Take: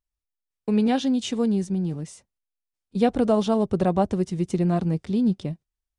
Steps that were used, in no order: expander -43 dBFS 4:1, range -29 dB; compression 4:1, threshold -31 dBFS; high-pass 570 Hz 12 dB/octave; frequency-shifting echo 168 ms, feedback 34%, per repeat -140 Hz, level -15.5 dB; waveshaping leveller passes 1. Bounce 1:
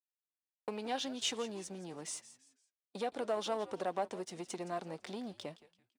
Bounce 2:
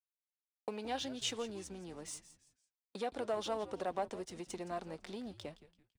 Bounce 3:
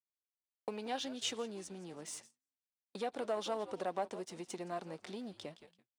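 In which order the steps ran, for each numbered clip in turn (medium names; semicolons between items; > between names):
compression > waveshaping leveller > expander > frequency-shifting echo > high-pass; waveshaping leveller > compression > expander > high-pass > frequency-shifting echo; frequency-shifting echo > waveshaping leveller > expander > compression > high-pass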